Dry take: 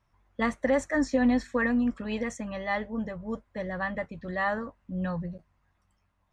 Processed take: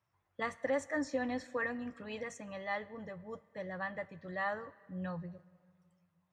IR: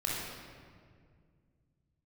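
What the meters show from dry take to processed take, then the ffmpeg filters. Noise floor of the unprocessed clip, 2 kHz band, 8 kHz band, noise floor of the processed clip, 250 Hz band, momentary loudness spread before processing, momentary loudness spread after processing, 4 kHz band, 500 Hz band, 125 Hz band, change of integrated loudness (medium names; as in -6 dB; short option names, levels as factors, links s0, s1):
-73 dBFS, -7.5 dB, -7.5 dB, -80 dBFS, -13.5 dB, 11 LU, 12 LU, -7.5 dB, -7.5 dB, -9.5 dB, -9.5 dB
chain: -filter_complex "[0:a]highpass=f=84:w=0.5412,highpass=f=84:w=1.3066,equalizer=f=230:t=o:w=0.23:g=-13,asplit=2[s0][s1];[1:a]atrim=start_sample=2205,lowshelf=f=420:g=-9[s2];[s1][s2]afir=irnorm=-1:irlink=0,volume=0.0841[s3];[s0][s3]amix=inputs=2:normalize=0,volume=0.398"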